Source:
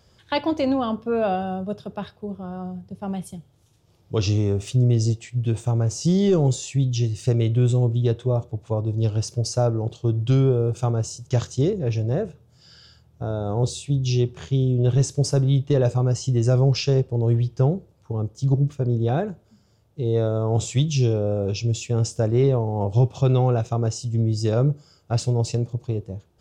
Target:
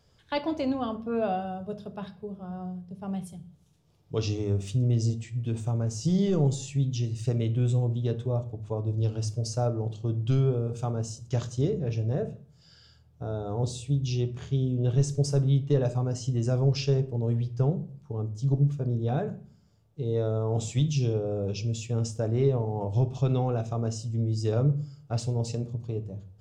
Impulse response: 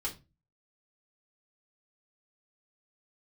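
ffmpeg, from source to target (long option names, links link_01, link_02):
-filter_complex "[0:a]asplit=2[link_01][link_02];[1:a]atrim=start_sample=2205,asetrate=22932,aresample=44100,lowshelf=frequency=370:gain=8[link_03];[link_02][link_03]afir=irnorm=-1:irlink=0,volume=-16dB[link_04];[link_01][link_04]amix=inputs=2:normalize=0,volume=-8.5dB"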